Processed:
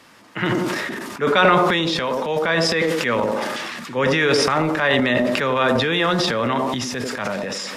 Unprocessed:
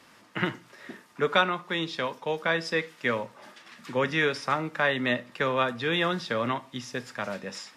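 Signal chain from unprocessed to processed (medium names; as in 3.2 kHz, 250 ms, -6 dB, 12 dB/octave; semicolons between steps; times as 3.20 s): feedback echo behind a band-pass 92 ms, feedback 37%, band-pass 420 Hz, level -8 dB; transient shaper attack -3 dB, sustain +11 dB; decay stretcher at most 23 dB/s; trim +6 dB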